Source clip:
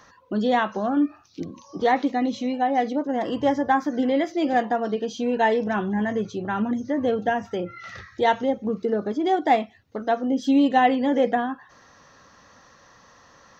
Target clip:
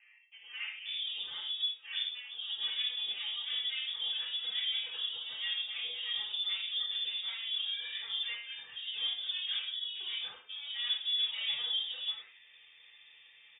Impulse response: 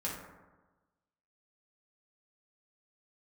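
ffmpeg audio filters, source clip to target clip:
-filter_complex "[0:a]aeval=exprs='0.501*(cos(1*acos(clip(val(0)/0.501,-1,1)))-cos(1*PI/2))+0.0708*(cos(8*acos(clip(val(0)/0.501,-1,1)))-cos(8*PI/2))':channel_layout=same,areverse,acompressor=threshold=-27dB:ratio=6,areverse,acrossover=split=750|2300[link_01][link_02][link_03];[link_01]adelay=540[link_04];[link_03]adelay=740[link_05];[link_04][link_02][link_05]amix=inputs=3:normalize=0[link_06];[1:a]atrim=start_sample=2205,atrim=end_sample=6174[link_07];[link_06][link_07]afir=irnorm=-1:irlink=0,lowpass=frequency=3100:width_type=q:width=0.5098,lowpass=frequency=3100:width_type=q:width=0.6013,lowpass=frequency=3100:width_type=q:width=0.9,lowpass=frequency=3100:width_type=q:width=2.563,afreqshift=-3700,volume=-7.5dB"

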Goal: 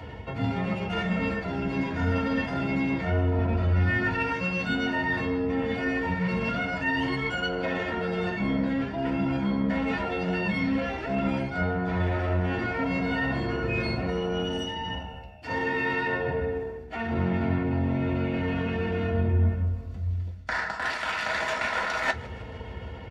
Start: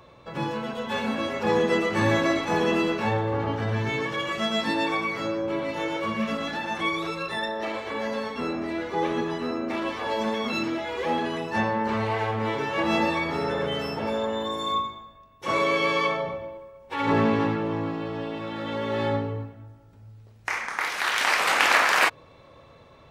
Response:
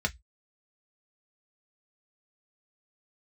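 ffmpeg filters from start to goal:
-filter_complex "[0:a]areverse,acompressor=threshold=-36dB:ratio=10,areverse,aeval=exprs='0.0501*(cos(1*acos(clip(val(0)/0.0501,-1,1)))-cos(1*PI/2))+0.00631*(cos(2*acos(clip(val(0)/0.0501,-1,1)))-cos(2*PI/2))+0.001*(cos(5*acos(clip(val(0)/0.0501,-1,1)))-cos(5*PI/2))':channel_layout=same,asetrate=36028,aresample=44100,atempo=1.22405,asplit=6[link_01][link_02][link_03][link_04][link_05][link_06];[link_02]adelay=155,afreqshift=-70,volume=-20dB[link_07];[link_03]adelay=310,afreqshift=-140,volume=-24.2dB[link_08];[link_04]adelay=465,afreqshift=-210,volume=-28.3dB[link_09];[link_05]adelay=620,afreqshift=-280,volume=-32.5dB[link_10];[link_06]adelay=775,afreqshift=-350,volume=-36.6dB[link_11];[link_01][link_07][link_08][link_09][link_10][link_11]amix=inputs=6:normalize=0[link_12];[1:a]atrim=start_sample=2205[link_13];[link_12][link_13]afir=irnorm=-1:irlink=0,volume=3dB"

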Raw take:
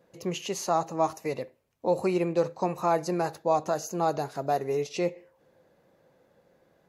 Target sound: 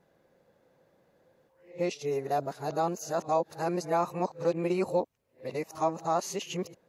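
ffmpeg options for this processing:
ffmpeg -i in.wav -af "areverse,volume=-2.5dB" out.wav

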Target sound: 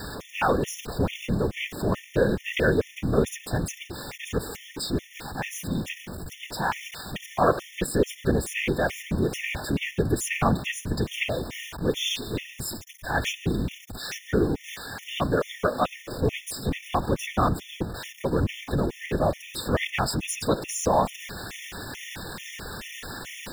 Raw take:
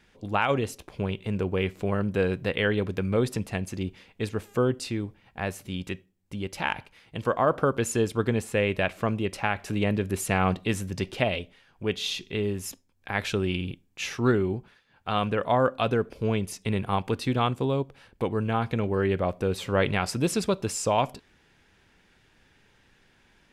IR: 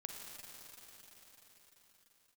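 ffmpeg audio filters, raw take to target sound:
-af "aeval=exprs='val(0)+0.5*0.0282*sgn(val(0))':channel_layout=same,afftfilt=real='hypot(re,im)*cos(2*PI*random(0))':imag='hypot(re,im)*sin(2*PI*random(1))':win_size=512:overlap=0.75,afftfilt=real='re*gt(sin(2*PI*2.3*pts/sr)*(1-2*mod(floor(b*sr/1024/1800),2)),0)':imag='im*gt(sin(2*PI*2.3*pts/sr)*(1-2*mod(floor(b*sr/1024/1800),2)),0)':win_size=1024:overlap=0.75,volume=8dB"

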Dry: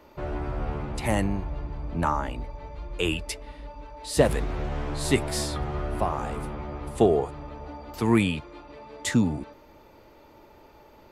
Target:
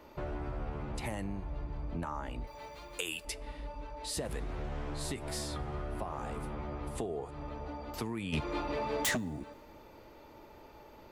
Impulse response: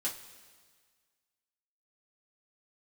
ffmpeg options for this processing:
-filter_complex "[0:a]alimiter=limit=-15.5dB:level=0:latency=1:release=137,asettb=1/sr,asplit=3[link_01][link_02][link_03];[link_01]atrim=end=2.474[link_04];[link_02]atrim=start=2.47:end=3.25,asetpts=PTS-STARTPTS,afade=type=in:duration=0.004:curve=qsin,afade=type=out:start_time=0.776:duration=0.004:curve=qsin,aemphasis=mode=production:type=riaa[link_05];[link_03]atrim=start=3.246[link_06];[link_04][link_05]acrossfade=duration=0.004:curve1=hsin:curve2=qsin[link_07];[link_07][link_06]acrossfade=duration=0.004:curve1=qsin:curve2=hsin,acompressor=threshold=-34dB:ratio=4,asplit=3[link_08][link_09][link_10];[link_08]afade=type=out:start_time=8.32:duration=0.02[link_11];[link_09]aeval=exprs='0.0596*sin(PI/2*2.51*val(0)/0.0596)':channel_layout=same,afade=type=in:start_time=8.32:duration=0.02,afade=type=out:start_time=9.16:duration=0.02[link_12];[link_10]afade=type=in:start_time=9.16:duration=0.02[link_13];[link_11][link_12][link_13]amix=inputs=3:normalize=0,asplit=2[link_14][link_15];[1:a]atrim=start_sample=2205[link_16];[link_15][link_16]afir=irnorm=-1:irlink=0,volume=-20dB[link_17];[link_14][link_17]amix=inputs=2:normalize=0,volume=-2dB"

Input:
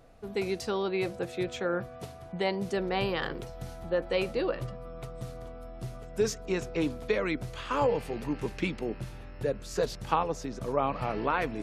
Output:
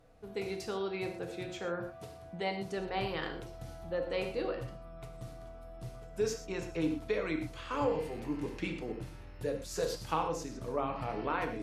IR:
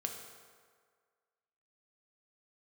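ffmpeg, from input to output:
-filter_complex "[0:a]asettb=1/sr,asplit=3[link_01][link_02][link_03];[link_01]atrim=end=9.274[link_04];[link_02]atrim=start=9.27:end=10.44,asetpts=PTS-STARTPTS,afade=type=in:duration=0.004:curve=qsin,afade=type=out:start_time=1.166:duration=0.004:curve=qsin,highshelf=frequency=4700:gain=8[link_05];[link_03]atrim=start=10.436[link_06];[link_04][link_05]acrossfade=duration=0.004:curve1=hsin:curve2=qsin[link_07];[link_07][link_06]acrossfade=duration=0.004:curve1=qsin:curve2=hsin[link_08];[1:a]atrim=start_sample=2205,atrim=end_sample=3969,asetrate=29547,aresample=44100[link_09];[link_08][link_09]afir=irnorm=-1:irlink=0,volume=-7dB"

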